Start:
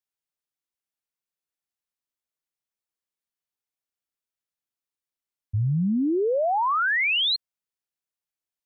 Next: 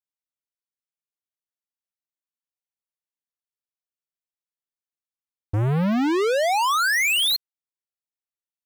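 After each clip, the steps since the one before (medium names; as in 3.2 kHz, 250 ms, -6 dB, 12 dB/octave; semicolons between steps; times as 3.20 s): waveshaping leveller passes 5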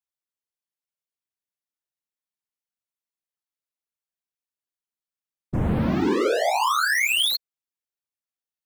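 whisper effect; trim -1.5 dB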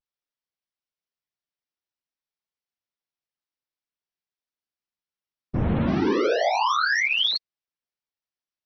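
vibrato 0.55 Hz 44 cents; MP3 24 kbps 24 kHz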